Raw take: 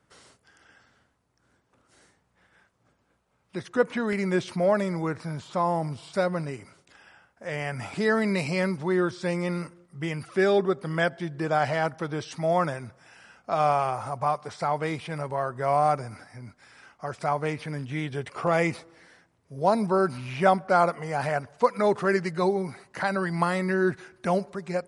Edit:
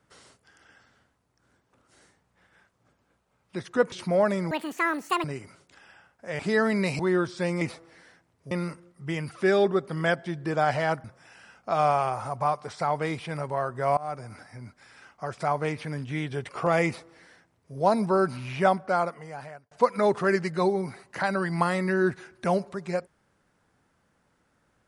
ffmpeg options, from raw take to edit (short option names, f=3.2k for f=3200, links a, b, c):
-filter_complex "[0:a]asplit=11[a][b][c][d][e][f][g][h][i][j][k];[a]atrim=end=3.922[l];[b]atrim=start=4.408:end=5.004[m];[c]atrim=start=5:end=6.42,asetpts=PTS-STARTPTS,asetrate=85554,aresample=44100,atrim=end_sample=32279,asetpts=PTS-STARTPTS[n];[d]atrim=start=6.416:end=7.572[o];[e]atrim=start=7.908:end=8.512[p];[f]atrim=start=8.828:end=9.452[q];[g]atrim=start=18.658:end=19.562[r];[h]atrim=start=9.448:end=11.982[s];[i]atrim=start=12.848:end=15.78,asetpts=PTS-STARTPTS,afade=t=out:st=2.928:d=0.004:c=hsin:silence=0.0668344[t];[j]atrim=start=15.78:end=21.52,asetpts=PTS-STARTPTS,afade=t=in:d=0.45:silence=0.0668344,afade=t=out:st=4.51:d=1.23[u];[k]atrim=start=21.52,asetpts=PTS-STARTPTS,afade=t=in:d=0.004:c=hsin[v];[l][m]acrossfade=d=0.004:c1=hsin:c2=hsin[w];[w][n]acrossfade=d=0.004:c1=hsin:c2=hsin[x];[x][o]acrossfade=d=0.004:c1=hsin:c2=hsin[y];[y][p]acrossfade=d=0.004:c1=hsin:c2=hsin[z];[z][q]acrossfade=d=0.004:c1=hsin:c2=hsin[aa];[aa][r]acrossfade=d=0.004:c1=hsin:c2=hsin[ab];[ab][s]acrossfade=d=0.004:c1=hsin:c2=hsin[ac];[t][u][v]concat=n=3:v=0:a=1[ad];[ac][ad]acrossfade=d=0.004:c1=hsin:c2=hsin"